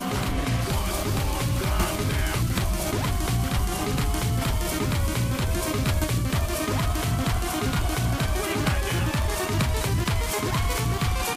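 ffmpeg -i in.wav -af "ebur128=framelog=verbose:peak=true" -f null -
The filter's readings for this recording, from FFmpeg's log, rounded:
Integrated loudness:
  I:         -25.6 LUFS
  Threshold: -35.6 LUFS
Loudness range:
  LRA:         0.5 LU
  Threshold: -45.5 LUFS
  LRA low:   -25.8 LUFS
  LRA high:  -25.3 LUFS
True peak:
  Peak:      -14.3 dBFS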